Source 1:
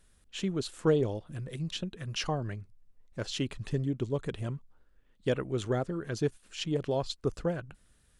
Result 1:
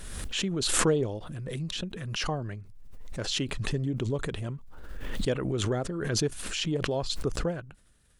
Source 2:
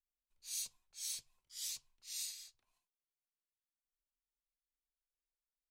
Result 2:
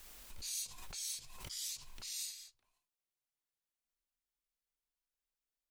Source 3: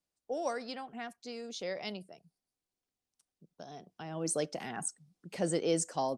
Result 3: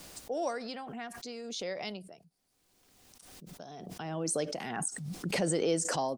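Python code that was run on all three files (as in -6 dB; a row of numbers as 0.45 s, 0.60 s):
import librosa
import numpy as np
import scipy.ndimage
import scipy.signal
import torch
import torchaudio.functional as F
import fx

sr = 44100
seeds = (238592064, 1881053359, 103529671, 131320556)

y = fx.pre_swell(x, sr, db_per_s=29.0)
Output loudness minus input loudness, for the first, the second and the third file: +3.0 LU, +1.0 LU, +2.0 LU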